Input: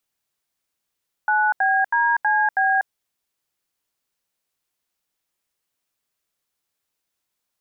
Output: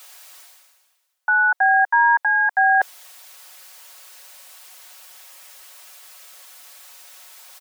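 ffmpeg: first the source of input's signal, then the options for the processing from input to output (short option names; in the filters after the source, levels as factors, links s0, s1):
-f lavfi -i "aevalsrc='0.119*clip(min(mod(t,0.322),0.243-mod(t,0.322))/0.002,0,1)*(eq(floor(t/0.322),0)*(sin(2*PI*852*mod(t,0.322))+sin(2*PI*1477*mod(t,0.322)))+eq(floor(t/0.322),1)*(sin(2*PI*770*mod(t,0.322))+sin(2*PI*1633*mod(t,0.322)))+eq(floor(t/0.322),2)*(sin(2*PI*941*mod(t,0.322))+sin(2*PI*1633*mod(t,0.322)))+eq(floor(t/0.322),3)*(sin(2*PI*852*mod(t,0.322))+sin(2*PI*1633*mod(t,0.322)))+eq(floor(t/0.322),4)*(sin(2*PI*770*mod(t,0.322))+sin(2*PI*1633*mod(t,0.322))))':d=1.61:s=44100"
-af "highpass=f=550:w=0.5412,highpass=f=550:w=1.3066,aecho=1:1:5.4:0.73,areverse,acompressor=mode=upward:threshold=0.126:ratio=2.5,areverse"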